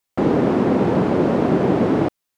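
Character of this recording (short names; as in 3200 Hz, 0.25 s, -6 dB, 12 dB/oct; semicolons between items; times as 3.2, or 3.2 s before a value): noise floor -79 dBFS; spectral tilt -6.0 dB/oct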